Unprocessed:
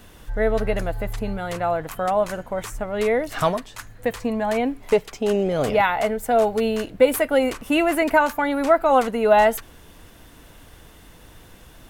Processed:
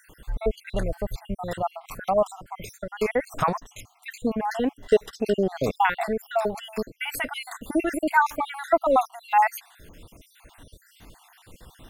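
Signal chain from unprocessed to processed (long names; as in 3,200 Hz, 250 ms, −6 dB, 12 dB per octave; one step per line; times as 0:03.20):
time-frequency cells dropped at random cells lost 60%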